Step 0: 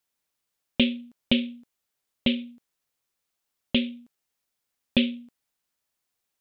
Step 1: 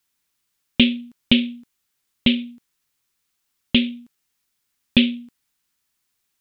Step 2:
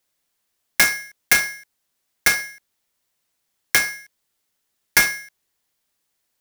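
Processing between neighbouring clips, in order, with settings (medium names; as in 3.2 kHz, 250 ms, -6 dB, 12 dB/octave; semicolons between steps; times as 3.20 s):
peaking EQ 600 Hz -10 dB 1 oct; trim +7.5 dB
self-modulated delay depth 0.87 ms; polarity switched at an audio rate 1.9 kHz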